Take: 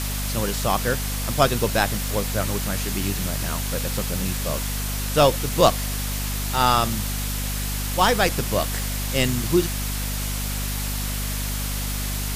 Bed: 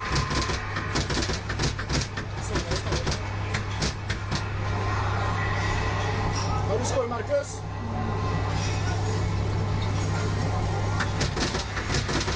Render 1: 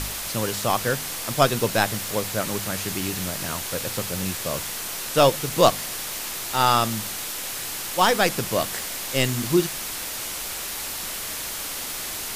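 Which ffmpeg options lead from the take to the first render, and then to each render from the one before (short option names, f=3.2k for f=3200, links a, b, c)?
-af "bandreject=f=50:t=h:w=4,bandreject=f=100:t=h:w=4,bandreject=f=150:t=h:w=4,bandreject=f=200:t=h:w=4,bandreject=f=250:t=h:w=4"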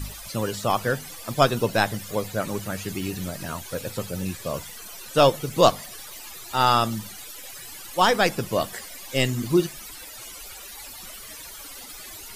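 -af "afftdn=nr=16:nf=-32"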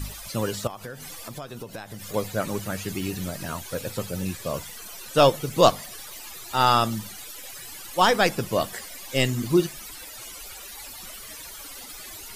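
-filter_complex "[0:a]asettb=1/sr,asplit=3[a][b][c];[a]atrim=end=0.674[d];[b]atrim=start=0.67:end=2.14,asetpts=PTS-STARTPTS,afade=t=in:d=0.004:c=qsin,afade=t=out:st=1.466:d=0.004:c=qsin,acompressor=threshold=-33dB:ratio=10:attack=3.2:release=140:knee=1:detection=peak[e];[c]atrim=start=2.136[f];[d][e]acrossfade=d=0.004:c1=hsin:c2=qsin[g];[g][f]acrossfade=d=0.004:c1=qsin:c2=hsin"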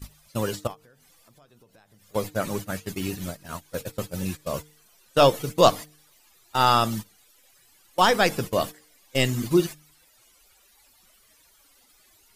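-af "agate=range=-19dB:threshold=-30dB:ratio=16:detection=peak,bandreject=f=151.3:t=h:w=4,bandreject=f=302.6:t=h:w=4,bandreject=f=453.9:t=h:w=4"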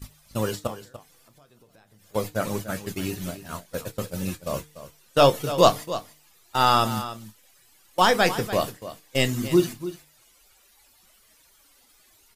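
-filter_complex "[0:a]asplit=2[a][b];[b]adelay=28,volume=-13.5dB[c];[a][c]amix=inputs=2:normalize=0,aecho=1:1:292:0.211"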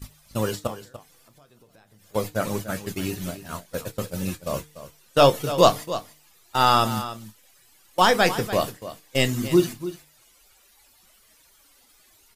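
-af "volume=1dB,alimiter=limit=-2dB:level=0:latency=1"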